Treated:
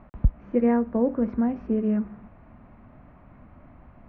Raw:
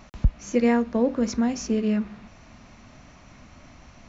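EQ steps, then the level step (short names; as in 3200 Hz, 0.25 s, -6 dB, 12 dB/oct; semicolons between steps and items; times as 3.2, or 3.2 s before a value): LPF 1500 Hz 12 dB/oct; air absorption 360 m; 0.0 dB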